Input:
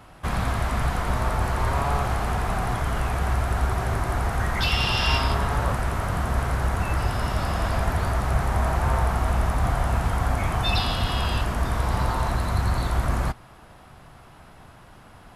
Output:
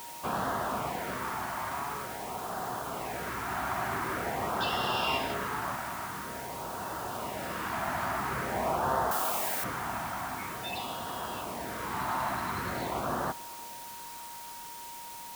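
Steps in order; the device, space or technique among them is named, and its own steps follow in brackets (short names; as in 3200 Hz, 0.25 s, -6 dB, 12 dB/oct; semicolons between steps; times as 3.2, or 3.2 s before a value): shortwave radio (BPF 270–2800 Hz; tremolo 0.23 Hz, depth 58%; LFO notch sine 0.47 Hz 440–2400 Hz; whine 940 Hz -44 dBFS; white noise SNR 12 dB); 9.11–9.64 tilt +3.5 dB/oct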